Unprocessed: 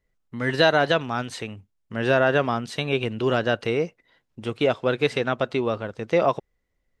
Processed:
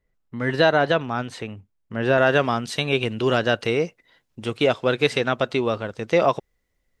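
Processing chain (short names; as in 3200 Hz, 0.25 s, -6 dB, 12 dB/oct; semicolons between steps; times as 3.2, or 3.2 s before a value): high shelf 3000 Hz -7 dB, from 2.18 s +5.5 dB; gain +1.5 dB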